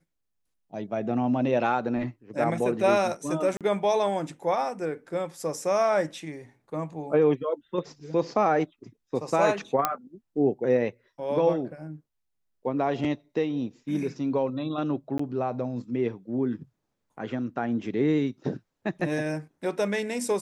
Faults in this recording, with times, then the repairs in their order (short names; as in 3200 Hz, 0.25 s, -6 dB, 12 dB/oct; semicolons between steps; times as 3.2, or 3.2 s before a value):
3.57–3.61 gap 37 ms
9.85 pop -8 dBFS
15.18–15.19 gap 14 ms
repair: de-click; interpolate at 3.57, 37 ms; interpolate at 15.18, 14 ms